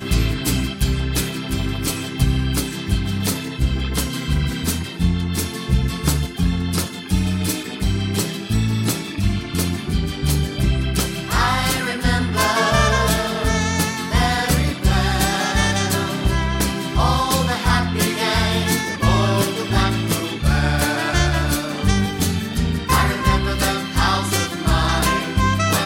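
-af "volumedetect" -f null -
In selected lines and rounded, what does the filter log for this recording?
mean_volume: -19.3 dB
max_volume: -3.1 dB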